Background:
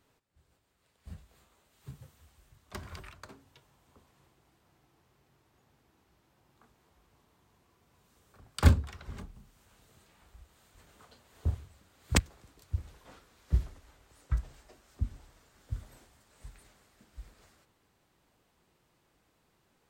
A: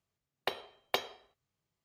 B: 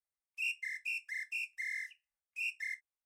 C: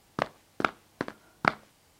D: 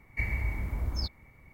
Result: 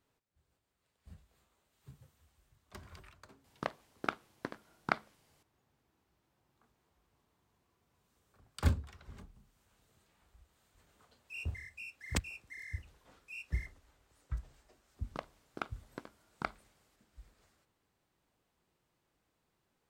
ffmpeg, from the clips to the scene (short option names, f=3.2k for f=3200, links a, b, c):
-filter_complex "[3:a]asplit=2[a][b];[0:a]volume=-8.5dB[c];[b]bandreject=f=1.8k:w=6.4[d];[a]atrim=end=1.99,asetpts=PTS-STARTPTS,volume=-8dB,afade=t=in:d=0.004:c=hsin,afade=t=out:st=1.986:d=0.004:c=hsin,adelay=3440[e];[2:a]atrim=end=3.05,asetpts=PTS-STARTPTS,volume=-9dB,afade=t=in:d=0.004:c=hsin,afade=t=out:st=3.046:d=0.004:c=hsin,adelay=10920[f];[d]atrim=end=1.99,asetpts=PTS-STARTPTS,volume=-13dB,afade=t=in:d=0.004:c=hsin,afade=t=out:st=1.986:d=0.004:c=hsin,adelay=14970[g];[c][e][f][g]amix=inputs=4:normalize=0"